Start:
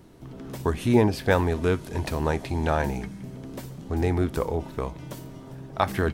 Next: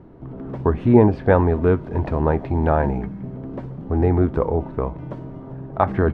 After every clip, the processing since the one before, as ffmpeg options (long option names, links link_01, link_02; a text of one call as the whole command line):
ffmpeg -i in.wav -af "lowpass=1200,volume=6.5dB" out.wav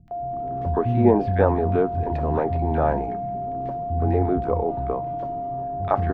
ffmpeg -i in.wav -filter_complex "[0:a]aeval=exprs='val(0)+0.0631*sin(2*PI*700*n/s)':channel_layout=same,acrossover=split=190|1600[link_01][link_02][link_03];[link_03]adelay=80[link_04];[link_02]adelay=110[link_05];[link_01][link_05][link_04]amix=inputs=3:normalize=0,volume=-2.5dB" out.wav